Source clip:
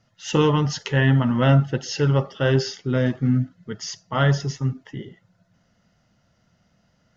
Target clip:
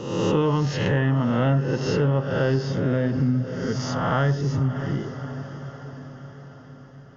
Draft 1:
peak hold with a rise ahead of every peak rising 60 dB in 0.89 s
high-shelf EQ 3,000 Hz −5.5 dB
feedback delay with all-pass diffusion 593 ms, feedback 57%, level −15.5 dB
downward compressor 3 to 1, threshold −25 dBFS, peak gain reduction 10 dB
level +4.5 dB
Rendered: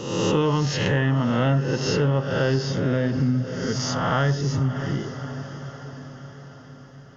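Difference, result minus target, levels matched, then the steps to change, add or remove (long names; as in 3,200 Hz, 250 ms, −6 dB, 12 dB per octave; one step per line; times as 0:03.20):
8,000 Hz band +7.0 dB
change: high-shelf EQ 3,000 Hz −14.5 dB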